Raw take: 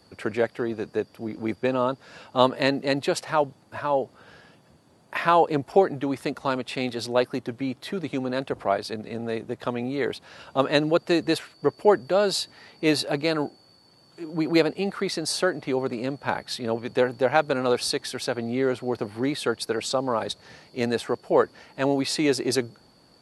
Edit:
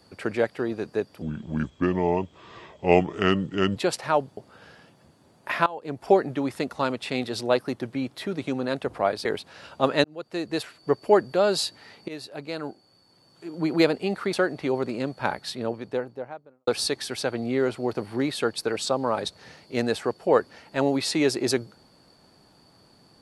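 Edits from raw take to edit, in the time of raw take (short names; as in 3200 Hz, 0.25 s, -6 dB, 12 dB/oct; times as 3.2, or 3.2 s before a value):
1.22–3 speed 70%
3.61–4.03 cut
5.32–5.73 fade in quadratic, from -20.5 dB
8.91–10.01 cut
10.8–11.66 fade in
12.84–14.44 fade in, from -18.5 dB
15.09–15.37 cut
16.3–17.71 studio fade out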